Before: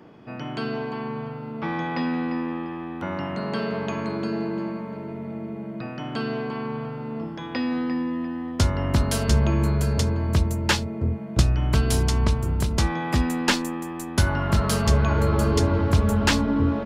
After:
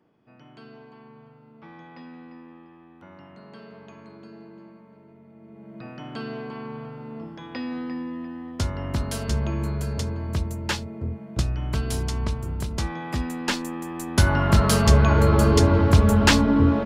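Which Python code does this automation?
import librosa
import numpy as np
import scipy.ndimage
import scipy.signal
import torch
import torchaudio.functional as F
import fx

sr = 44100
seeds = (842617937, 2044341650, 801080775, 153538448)

y = fx.gain(x, sr, db=fx.line((5.33, -17.5), (5.87, -5.5), (13.39, -5.5), (14.35, 3.5)))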